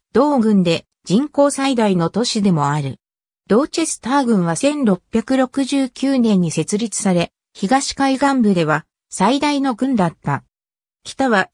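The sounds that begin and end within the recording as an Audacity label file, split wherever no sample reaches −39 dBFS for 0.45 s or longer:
3.500000	10.400000	sound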